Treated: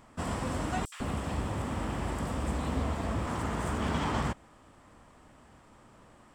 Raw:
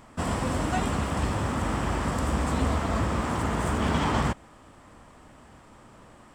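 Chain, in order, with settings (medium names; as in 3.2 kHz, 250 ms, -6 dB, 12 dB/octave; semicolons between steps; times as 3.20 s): 0.85–3.27 s: three bands offset in time highs, mids, lows 70/150 ms, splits 1.4/5.9 kHz; trim -5.5 dB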